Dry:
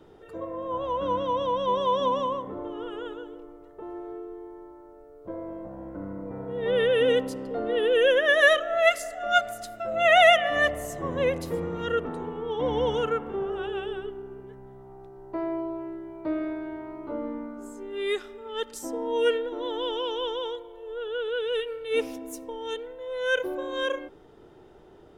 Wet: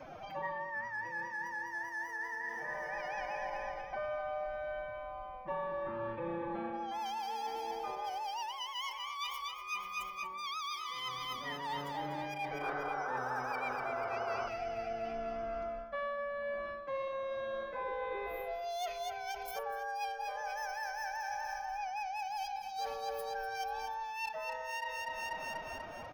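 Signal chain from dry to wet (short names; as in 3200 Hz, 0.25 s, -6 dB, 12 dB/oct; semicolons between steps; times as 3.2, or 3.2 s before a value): Wiener smoothing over 9 samples; dynamic EQ 1100 Hz, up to +7 dB, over -42 dBFS, Q 2.2; time stretch by phase-locked vocoder 1.8×; on a send: feedback echo 0.424 s, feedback 54%, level -9 dB; on the sum: speed mistake 45 rpm record played at 78 rpm; reverse; compressor 6:1, threshold -37 dBFS, peak gain reduction 23 dB; reverse; high shelf 11000 Hz +11 dB; vocal rider within 5 dB 0.5 s; painted sound noise, 12.61–14.49, 360–1600 Hz -41 dBFS; ending taper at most 110 dB/s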